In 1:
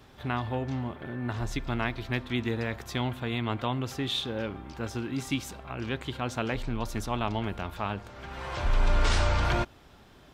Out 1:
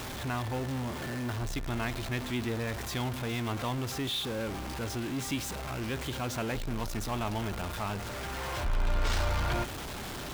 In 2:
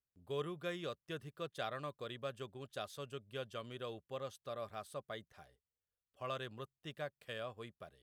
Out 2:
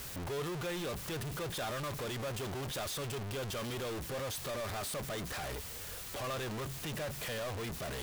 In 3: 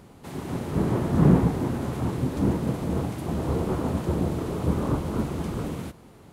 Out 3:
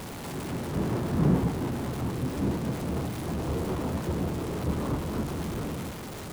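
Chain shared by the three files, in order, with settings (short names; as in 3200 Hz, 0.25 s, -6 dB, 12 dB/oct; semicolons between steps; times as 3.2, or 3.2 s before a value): zero-crossing step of -27 dBFS; gain -6.5 dB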